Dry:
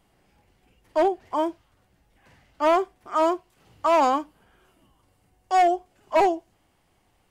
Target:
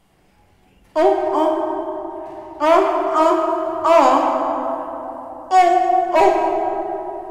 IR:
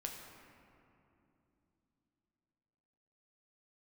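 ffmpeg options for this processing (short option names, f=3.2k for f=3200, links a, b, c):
-filter_complex "[1:a]atrim=start_sample=2205,asetrate=29988,aresample=44100[a];[0:a][a]afir=irnorm=-1:irlink=0,volume=6.5dB"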